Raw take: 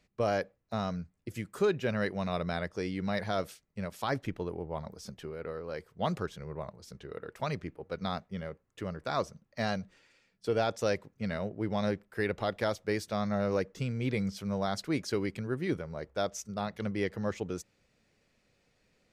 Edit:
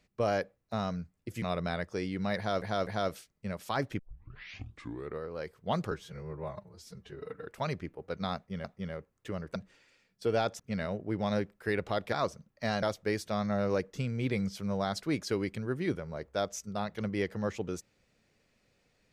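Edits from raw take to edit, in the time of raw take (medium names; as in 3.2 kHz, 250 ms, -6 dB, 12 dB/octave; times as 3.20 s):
1.42–2.25 s: delete
3.20–3.45 s: loop, 3 plays
4.32 s: tape start 1.22 s
6.24–7.27 s: stretch 1.5×
8.17–8.46 s: loop, 2 plays
9.08–9.78 s: move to 12.64 s
10.82–11.11 s: delete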